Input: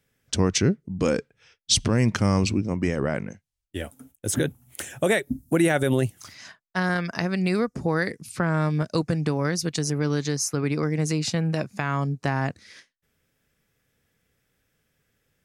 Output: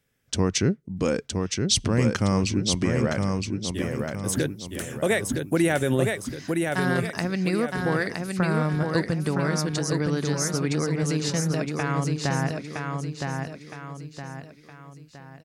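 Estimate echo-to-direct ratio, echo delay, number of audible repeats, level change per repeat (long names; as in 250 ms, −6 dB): −3.0 dB, 965 ms, 4, −7.5 dB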